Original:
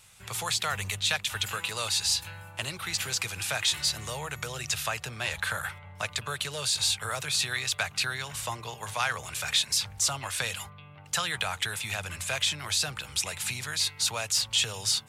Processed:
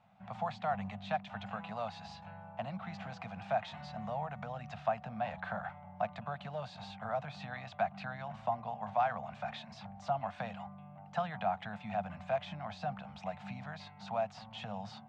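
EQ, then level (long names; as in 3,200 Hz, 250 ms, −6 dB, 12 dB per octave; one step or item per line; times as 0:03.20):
pair of resonant band-passes 380 Hz, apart 1.8 octaves
high-frequency loss of the air 160 metres
+10.5 dB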